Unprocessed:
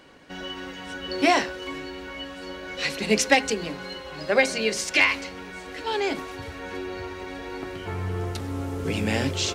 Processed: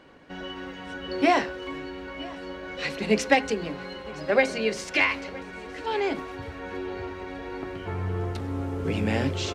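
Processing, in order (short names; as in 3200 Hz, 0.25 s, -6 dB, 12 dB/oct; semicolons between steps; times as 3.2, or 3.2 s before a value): high shelf 3700 Hz -12 dB; echo 0.966 s -21 dB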